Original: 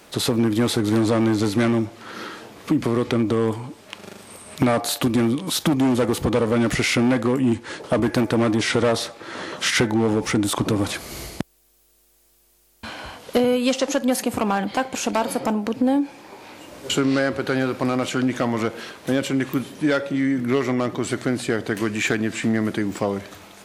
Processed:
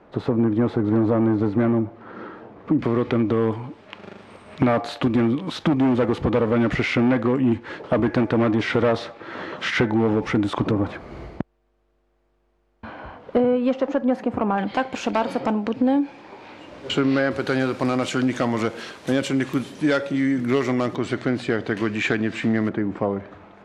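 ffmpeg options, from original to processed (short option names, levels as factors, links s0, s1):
-af "asetnsamples=n=441:p=0,asendcmd='2.79 lowpass f 2600;10.71 lowpass f 1400;14.58 lowpass f 3500;17.31 lowpass f 8500;20.96 lowpass f 3800;22.69 lowpass f 1500',lowpass=1200"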